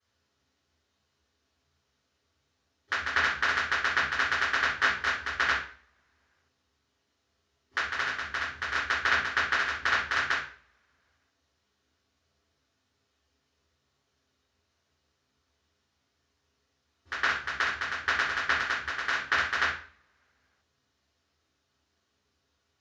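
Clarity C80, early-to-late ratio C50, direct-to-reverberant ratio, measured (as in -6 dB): 9.0 dB, 4.0 dB, -12.5 dB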